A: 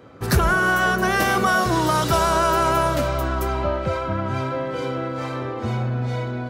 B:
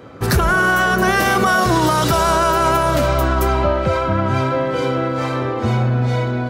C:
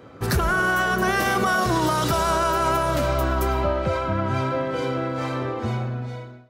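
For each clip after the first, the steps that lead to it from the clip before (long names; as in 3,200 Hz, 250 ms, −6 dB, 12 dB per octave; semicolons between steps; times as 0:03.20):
boost into a limiter +13 dB; level −6 dB
fade-out on the ending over 1.00 s; comb and all-pass reverb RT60 0.7 s, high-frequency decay 0.95×, pre-delay 65 ms, DRR 17 dB; level −6 dB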